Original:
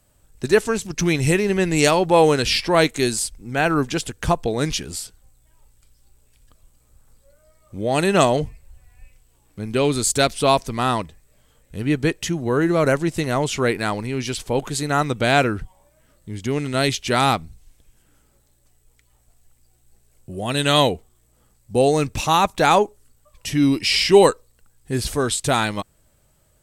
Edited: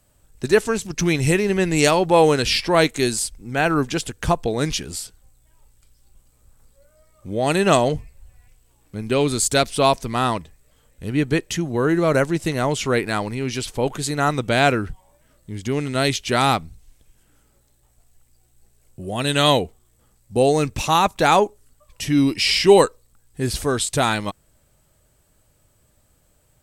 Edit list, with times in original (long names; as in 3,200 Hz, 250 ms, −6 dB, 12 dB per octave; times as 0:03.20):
compress silence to 80%